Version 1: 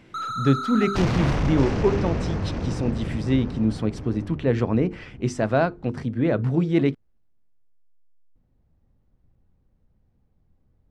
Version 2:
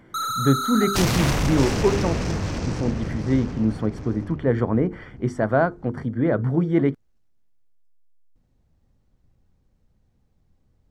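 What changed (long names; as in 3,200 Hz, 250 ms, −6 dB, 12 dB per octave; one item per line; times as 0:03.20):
speech: add Savitzky-Golay smoothing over 41 samples
master: remove head-to-tape spacing loss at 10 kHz 22 dB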